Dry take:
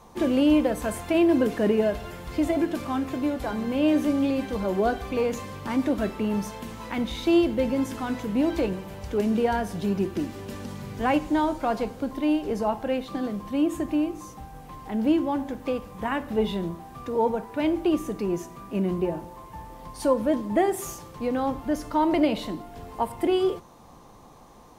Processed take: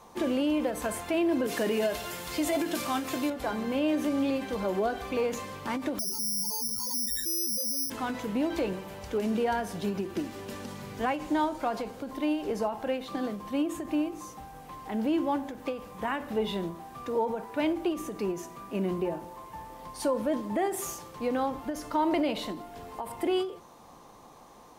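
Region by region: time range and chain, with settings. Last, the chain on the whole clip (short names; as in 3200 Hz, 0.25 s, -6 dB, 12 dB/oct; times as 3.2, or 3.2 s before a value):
1.47–3.3 HPF 61 Hz + high shelf 2800 Hz +12 dB + doubler 17 ms -13 dB
5.99–7.9 spectral contrast raised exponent 3.9 + short-mantissa float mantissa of 8-bit + careless resampling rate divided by 8×, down none, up zero stuff
whole clip: limiter -17.5 dBFS; low shelf 190 Hz -10 dB; ending taper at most 120 dB/s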